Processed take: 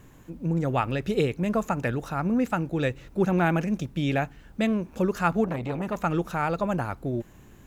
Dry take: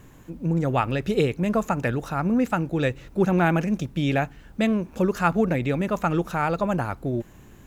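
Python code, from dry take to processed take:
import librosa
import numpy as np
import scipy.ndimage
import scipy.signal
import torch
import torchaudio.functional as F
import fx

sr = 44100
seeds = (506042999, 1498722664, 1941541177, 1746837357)

y = fx.transformer_sat(x, sr, knee_hz=720.0, at=(5.44, 6.01))
y = y * 10.0 ** (-2.5 / 20.0)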